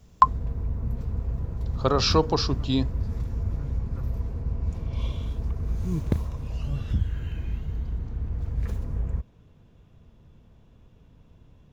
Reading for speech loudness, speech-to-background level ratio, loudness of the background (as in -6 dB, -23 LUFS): -24.5 LUFS, 6.5 dB, -31.0 LUFS